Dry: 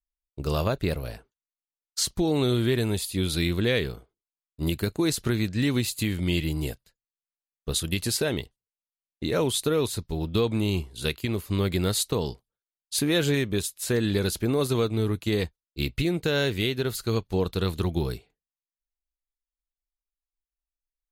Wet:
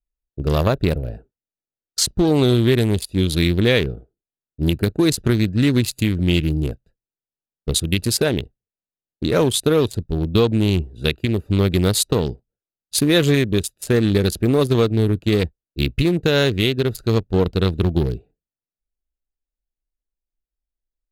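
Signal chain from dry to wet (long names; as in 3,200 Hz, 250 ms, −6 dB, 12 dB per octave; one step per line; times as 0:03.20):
adaptive Wiener filter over 41 samples
level +8.5 dB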